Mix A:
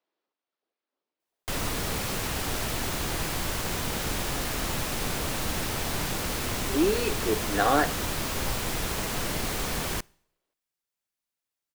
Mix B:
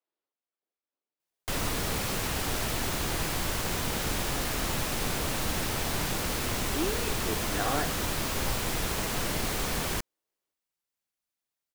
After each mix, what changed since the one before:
speech -8.5 dB; reverb: off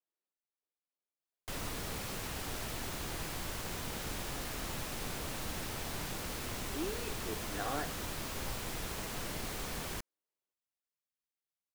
speech -7.0 dB; background -9.5 dB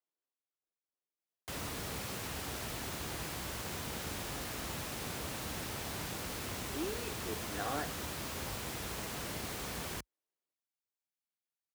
background: add high-pass 49 Hz 24 dB/octave

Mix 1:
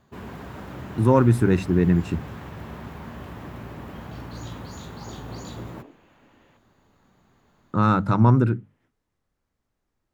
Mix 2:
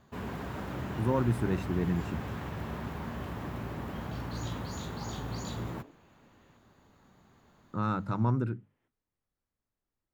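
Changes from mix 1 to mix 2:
speech -11.5 dB; second sound -7.0 dB

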